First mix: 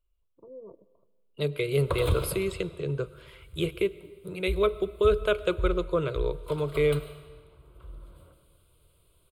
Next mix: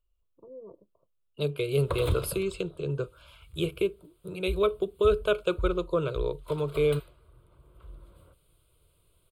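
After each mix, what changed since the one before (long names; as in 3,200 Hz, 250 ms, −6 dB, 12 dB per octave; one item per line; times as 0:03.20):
second voice: add Butterworth band-reject 1,900 Hz, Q 2.8
reverb: off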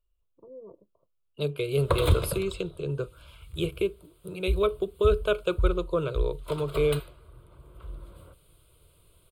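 background +6.5 dB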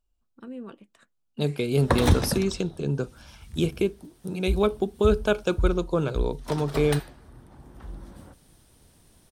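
first voice: remove Butterworth low-pass 990 Hz 72 dB per octave
master: remove phaser with its sweep stopped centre 1,200 Hz, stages 8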